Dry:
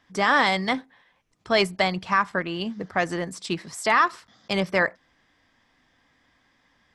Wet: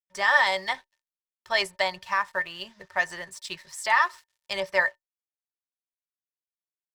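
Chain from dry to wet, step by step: crossover distortion -51 dBFS; amplifier tone stack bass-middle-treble 10-0-10; small resonant body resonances 380/570/920/1800 Hz, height 15 dB, ringing for 85 ms; dynamic bell 770 Hz, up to +6 dB, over -42 dBFS, Q 2

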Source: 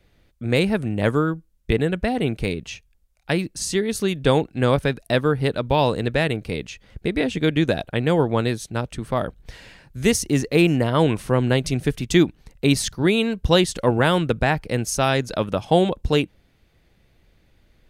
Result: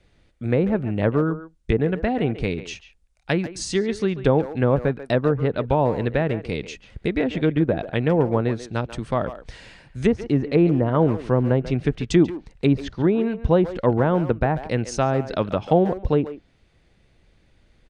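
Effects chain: resampled via 22.05 kHz; low-pass that closes with the level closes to 950 Hz, closed at -14.5 dBFS; speakerphone echo 140 ms, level -12 dB

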